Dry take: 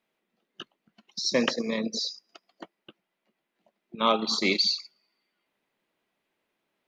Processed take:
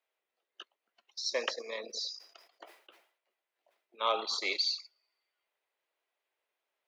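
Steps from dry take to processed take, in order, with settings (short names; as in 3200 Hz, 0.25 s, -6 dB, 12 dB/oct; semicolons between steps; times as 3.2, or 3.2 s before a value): HPF 450 Hz 24 dB/oct; 1.75–4.37 sustainer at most 110 dB/s; gain -6.5 dB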